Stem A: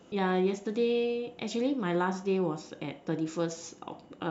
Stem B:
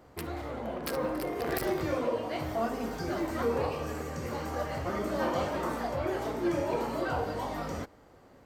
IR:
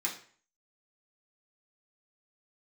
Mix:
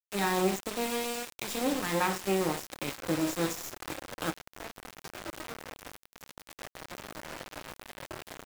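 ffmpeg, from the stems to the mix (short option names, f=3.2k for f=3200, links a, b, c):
-filter_complex "[0:a]acrusher=bits=4:dc=4:mix=0:aa=0.000001,volume=2.5dB,asplit=3[a][b][c];[b]volume=-6dB[d];[1:a]equalizer=f=620:t=o:w=0.35:g=4,acompressor=threshold=-36dB:ratio=2.5,alimiter=level_in=6dB:limit=-24dB:level=0:latency=1:release=163,volume=-6dB,adelay=2050,volume=0.5dB,asplit=2[e][f];[f]volume=-14.5dB[g];[c]apad=whole_len=463058[h];[e][h]sidechaincompress=threshold=-35dB:ratio=3:attack=47:release=390[i];[2:a]atrim=start_sample=2205[j];[d][g]amix=inputs=2:normalize=0[k];[k][j]afir=irnorm=-1:irlink=0[l];[a][i][l]amix=inputs=3:normalize=0,highpass=f=100:w=0.5412,highpass=f=100:w=1.3066,highshelf=f=4.4k:g=2,aeval=exprs='val(0)*gte(abs(val(0)),0.0237)':c=same"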